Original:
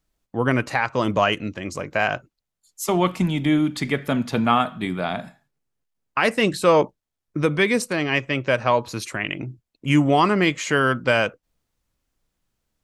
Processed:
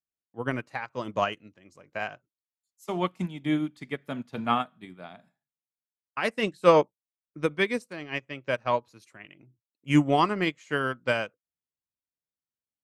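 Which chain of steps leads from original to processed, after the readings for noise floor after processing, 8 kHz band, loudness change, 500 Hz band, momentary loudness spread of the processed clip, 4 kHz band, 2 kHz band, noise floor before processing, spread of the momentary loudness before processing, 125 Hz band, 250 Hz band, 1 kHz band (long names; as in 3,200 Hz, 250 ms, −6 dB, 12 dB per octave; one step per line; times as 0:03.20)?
below −85 dBFS, below −15 dB, −6.5 dB, −6.0 dB, 17 LU, −8.5 dB, −9.0 dB, −83 dBFS, 12 LU, −9.0 dB, −7.5 dB, −6.5 dB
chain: high-pass filter 89 Hz
expander for the loud parts 2.5 to 1, over −29 dBFS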